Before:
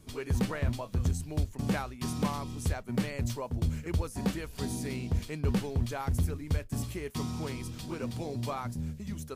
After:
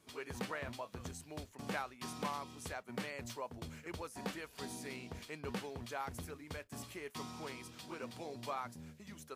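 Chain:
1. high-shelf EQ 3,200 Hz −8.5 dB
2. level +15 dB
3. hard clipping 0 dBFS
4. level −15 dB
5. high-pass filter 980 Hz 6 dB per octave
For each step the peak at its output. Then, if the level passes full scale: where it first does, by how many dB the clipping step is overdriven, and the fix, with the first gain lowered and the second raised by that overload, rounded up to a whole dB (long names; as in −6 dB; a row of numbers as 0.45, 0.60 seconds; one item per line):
−20.5, −5.5, −5.5, −20.5, −24.5 dBFS
no step passes full scale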